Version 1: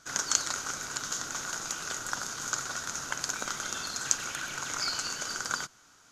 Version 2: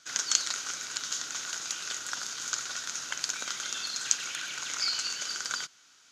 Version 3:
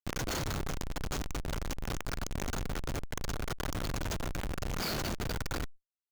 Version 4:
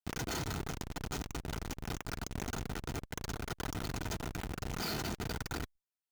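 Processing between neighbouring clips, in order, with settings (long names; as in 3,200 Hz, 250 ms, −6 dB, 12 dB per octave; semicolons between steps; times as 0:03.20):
meter weighting curve D; level −7 dB
comparator with hysteresis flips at −28.5 dBFS; envelope flattener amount 70%
notch comb filter 560 Hz; level −1.5 dB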